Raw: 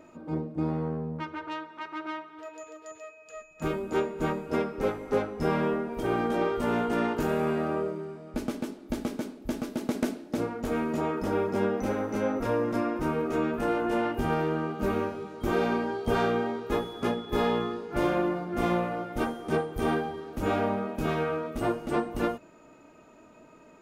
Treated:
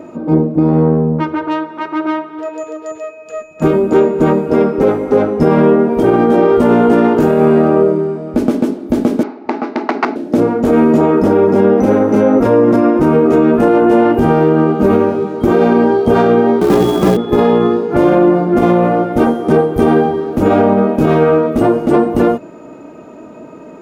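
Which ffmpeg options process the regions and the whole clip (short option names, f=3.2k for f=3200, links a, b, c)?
-filter_complex "[0:a]asettb=1/sr,asplit=3[a][b][c];[a]atrim=end=9.234[d];[b]atrim=start=9.23:end=10.16,asetpts=PTS-STARTPTS,afade=t=in:d=0.004:c=qsin,afade=t=out:st=0.926:d=0.004:c=qsin,aeval=exprs='(mod(9.44*val(0)+1,2)-1)/9.44':c=same,highpass=420,equalizer=f=530:t=q:w=4:g=-10,equalizer=f=840:t=q:w=4:g=8,equalizer=f=1.3k:t=q:w=4:g=5,equalizer=f=2.1k:t=q:w=4:g=5,equalizer=f=3.3k:t=q:w=4:g=-9,lowpass=f=4.3k:w=0.5412,lowpass=f=4.3k:w=1.3066[e];[c]atrim=start=10.156[f];[d][e]acrossfade=d=0.004:c1=hsin:c2=qsin[g];[g][f]acrossfade=d=0.004:c1=qsin:c2=hsin,asettb=1/sr,asplit=3[h][i][j];[h]atrim=end=16.614[k];[i]atrim=start=16.61:end=17.17,asetpts=PTS-STARTPTS,afade=t=in:d=0.004:c=qsin,afade=t=out:st=0.556:d=0.004:c=qsin,acontrast=55,afreqshift=-49,acrusher=bits=2:mode=log:mix=0:aa=0.000001[l];[j]atrim=start=17.166[m];[k][l]acrossfade=d=0.004:c1=hsin:c2=qsin[n];[n][m]acrossfade=d=0.004:c1=qsin:c2=hsin,highpass=f=370:p=1,tiltshelf=f=780:g=9.5,alimiter=level_in=20dB:limit=-1dB:release=50:level=0:latency=1,volume=-1dB"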